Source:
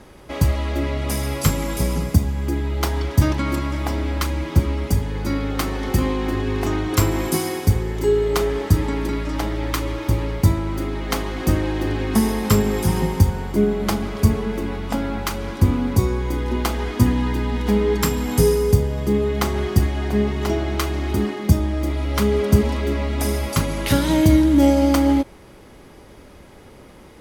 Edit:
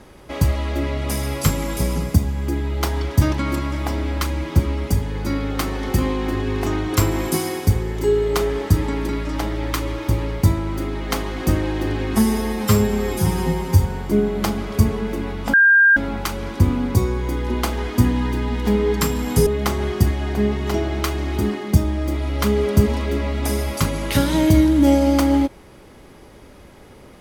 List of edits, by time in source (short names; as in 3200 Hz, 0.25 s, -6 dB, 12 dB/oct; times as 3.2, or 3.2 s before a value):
12.13–13.24 stretch 1.5×
14.98 add tone 1600 Hz -9 dBFS 0.43 s
18.48–19.22 cut